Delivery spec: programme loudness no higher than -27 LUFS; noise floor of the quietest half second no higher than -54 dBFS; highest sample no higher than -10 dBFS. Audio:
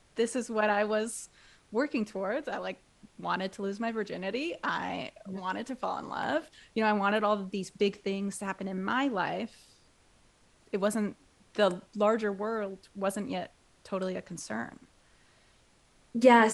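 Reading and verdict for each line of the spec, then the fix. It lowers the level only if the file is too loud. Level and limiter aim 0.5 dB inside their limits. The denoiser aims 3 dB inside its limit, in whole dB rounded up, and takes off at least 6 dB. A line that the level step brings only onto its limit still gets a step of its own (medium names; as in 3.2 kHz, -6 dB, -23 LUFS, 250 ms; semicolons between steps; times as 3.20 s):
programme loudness -31.5 LUFS: pass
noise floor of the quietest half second -64 dBFS: pass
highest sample -8.0 dBFS: fail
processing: peak limiter -10.5 dBFS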